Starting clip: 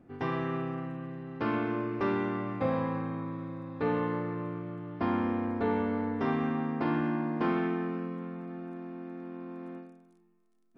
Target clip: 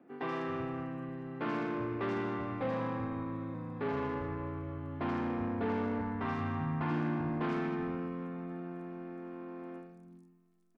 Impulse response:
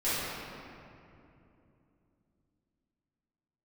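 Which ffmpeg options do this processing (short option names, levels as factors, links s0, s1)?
-filter_complex "[0:a]asettb=1/sr,asplit=3[s0][s1][s2];[s0]atrim=end=6.014[s3];[s1]atrim=start=6.01:end=6.91,asetpts=PTS-STARTPTS,afade=t=in:d=0.004:c=qsin,afade=t=out:st=0.896:d=0.004:c=qsin,equalizer=f=125:t=o:w=1:g=10,equalizer=f=250:t=o:w=1:g=-6,equalizer=f=500:t=o:w=1:g=-8,equalizer=f=1000:t=o:w=1:g=3,equalizer=f=4000:t=o:w=1:g=-4[s4];[s2]atrim=start=6.906[s5];[s3][s4]acrossfade=d=0.004:c1=hsin:c2=qsin[s6];[s6][s5]acrossfade=d=0.004:c1=qsin:c2=hsin,acrossover=split=180[s7][s8];[s8]asoftclip=type=tanh:threshold=0.0299[s9];[s7][s9]amix=inputs=2:normalize=0,asettb=1/sr,asplit=3[s10][s11][s12];[s10]atrim=end=3.544[s13];[s11]atrim=start=3.54:end=5,asetpts=PTS-STARTPTS,afade=t=in:d=0.004:c=qsin,afade=t=out:st=1.456:d=0.004:c=qsin,afreqshift=-28[s14];[s12]atrim=start=4.996[s15];[s13][s14]acrossfade=d=0.004:c1=hsin:c2=qsin[s16];[s16][s15]acrossfade=d=0.004:c1=qsin:c2=hsin,acrossover=split=190|4200[s17][s18][s19];[s19]adelay=80[s20];[s17]adelay=380[s21];[s21][s18][s20]amix=inputs=3:normalize=0"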